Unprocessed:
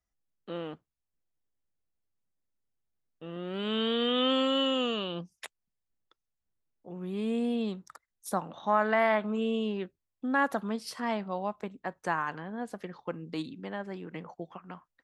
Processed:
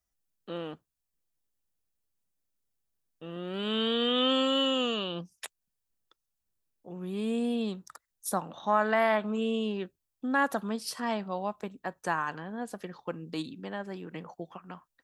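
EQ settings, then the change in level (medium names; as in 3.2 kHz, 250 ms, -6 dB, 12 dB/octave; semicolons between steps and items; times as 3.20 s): treble shelf 5.5 kHz +8.5 dB; band-stop 2.1 kHz, Q 13; 0.0 dB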